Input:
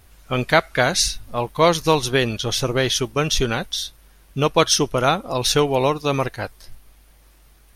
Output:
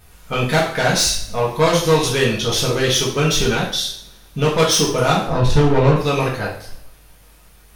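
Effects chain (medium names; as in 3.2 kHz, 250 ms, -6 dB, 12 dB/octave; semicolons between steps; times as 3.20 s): 5.27–5.96 s: RIAA curve playback; saturation -15.5 dBFS, distortion -9 dB; two-slope reverb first 0.52 s, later 1.6 s, from -23 dB, DRR -4.5 dB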